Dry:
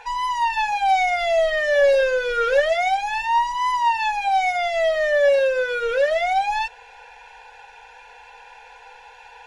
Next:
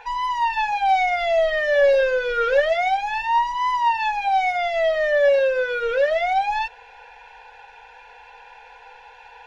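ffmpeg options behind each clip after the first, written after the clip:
-af "equalizer=f=8800:w=1:g=-12"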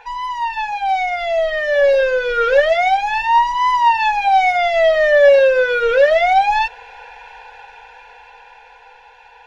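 -af "dynaudnorm=f=320:g=13:m=3.76"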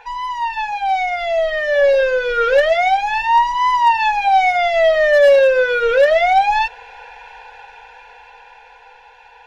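-af "asoftclip=type=hard:threshold=0.501"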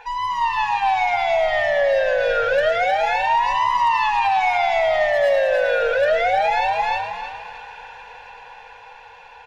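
-filter_complex "[0:a]asplit=2[s0][s1];[s1]aecho=0:1:312|624|936|1248:0.473|0.151|0.0485|0.0155[s2];[s0][s2]amix=inputs=2:normalize=0,alimiter=limit=0.251:level=0:latency=1:release=124,asplit=2[s3][s4];[s4]asplit=4[s5][s6][s7][s8];[s5]adelay=111,afreqshift=83,volume=0.299[s9];[s6]adelay=222,afreqshift=166,volume=0.126[s10];[s7]adelay=333,afreqshift=249,volume=0.0525[s11];[s8]adelay=444,afreqshift=332,volume=0.0221[s12];[s9][s10][s11][s12]amix=inputs=4:normalize=0[s13];[s3][s13]amix=inputs=2:normalize=0"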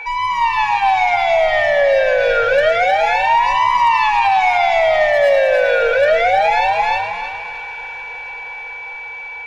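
-af "aeval=exprs='val(0)+0.0251*sin(2*PI*2300*n/s)':c=same,volume=1.68"

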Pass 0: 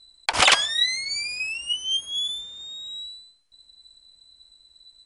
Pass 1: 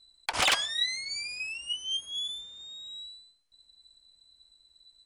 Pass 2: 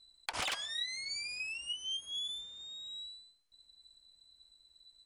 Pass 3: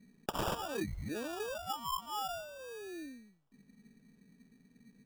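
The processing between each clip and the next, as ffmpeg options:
-af "asoftclip=type=hard:threshold=0.282,volume=0.447"
-af "acompressor=threshold=0.02:ratio=3,volume=0.75"
-af "acrusher=samples=21:mix=1:aa=0.000001,volume=1.12"

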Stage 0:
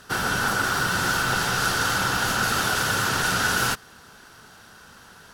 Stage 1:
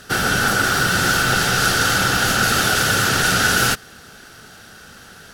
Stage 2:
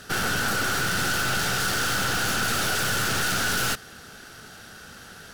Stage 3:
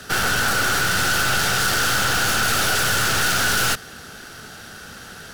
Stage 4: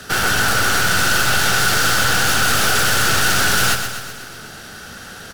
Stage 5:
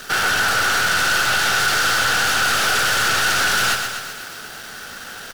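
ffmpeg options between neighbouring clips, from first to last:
-af "equalizer=f=1000:w=4.5:g=-12.5,volume=2.24"
-af "aeval=exprs='(tanh(14.1*val(0)+0.5)-tanh(0.5))/14.1':c=same"
-filter_complex "[0:a]acrossover=split=120|440|5300[s0][s1][s2][s3];[s1]alimiter=level_in=3.55:limit=0.0631:level=0:latency=1,volume=0.282[s4];[s2]acrusher=bits=5:mode=log:mix=0:aa=0.000001[s5];[s0][s4][s5][s3]amix=inputs=4:normalize=0,volume=1.88"
-af "aecho=1:1:125|250|375|500|625|750|875:0.398|0.231|0.134|0.0777|0.0451|0.0261|0.0152,volume=1.33"
-filter_complex "[0:a]asplit=2[s0][s1];[s1]highpass=f=720:p=1,volume=3.98,asoftclip=type=tanh:threshold=0.708[s2];[s0][s2]amix=inputs=2:normalize=0,lowpass=f=5400:p=1,volume=0.501,acrusher=bits=6:dc=4:mix=0:aa=0.000001,volume=0.562"

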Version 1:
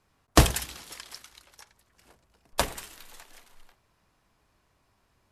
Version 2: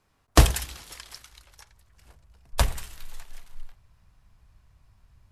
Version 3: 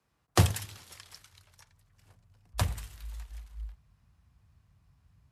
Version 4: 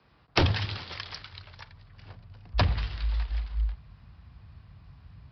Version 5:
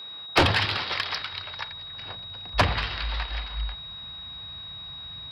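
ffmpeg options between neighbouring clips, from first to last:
-af "asubboost=boost=10:cutoff=110"
-af "afreqshift=40,volume=0.447"
-af "aresample=11025,aeval=exprs='0.299*sin(PI/2*3.16*val(0)/0.299)':c=same,aresample=44100,acompressor=threshold=0.0708:ratio=2.5"
-filter_complex "[0:a]asplit=2[s0][s1];[s1]highpass=f=720:p=1,volume=8.91,asoftclip=type=tanh:threshold=0.376[s2];[s0][s2]amix=inputs=2:normalize=0,lowpass=f=2900:p=1,volume=0.501,aeval=exprs='val(0)+0.0126*sin(2*PI*3800*n/s)':c=same,volume=1.12"

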